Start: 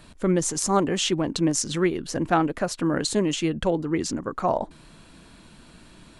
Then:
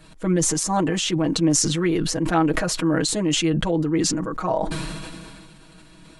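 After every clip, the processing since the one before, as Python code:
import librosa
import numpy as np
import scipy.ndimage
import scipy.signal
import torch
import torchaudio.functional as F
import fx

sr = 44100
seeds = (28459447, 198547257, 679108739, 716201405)

y = x + 0.95 * np.pad(x, (int(6.3 * sr / 1000.0), 0))[:len(x)]
y = fx.sustainer(y, sr, db_per_s=26.0)
y = y * librosa.db_to_amplitude(-3.0)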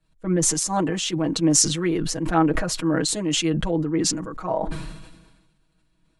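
y = fx.band_widen(x, sr, depth_pct=70)
y = y * librosa.db_to_amplitude(-1.5)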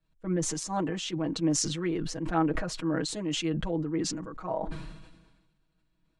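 y = fx.air_absorb(x, sr, metres=60.0)
y = y * librosa.db_to_amplitude(-7.0)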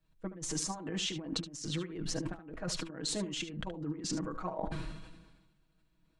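y = fx.over_compress(x, sr, threshold_db=-34.0, ratio=-0.5)
y = y + 10.0 ** (-12.0 / 20.0) * np.pad(y, (int(73 * sr / 1000.0), 0))[:len(y)]
y = y * librosa.db_to_amplitude(-3.5)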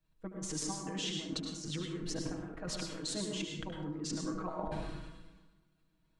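y = fx.rev_plate(x, sr, seeds[0], rt60_s=0.64, hf_ratio=0.6, predelay_ms=90, drr_db=2.0)
y = y * librosa.db_to_amplitude(-3.5)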